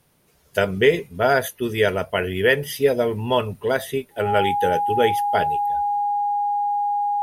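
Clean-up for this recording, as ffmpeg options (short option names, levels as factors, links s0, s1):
-af "bandreject=f=820:w=30"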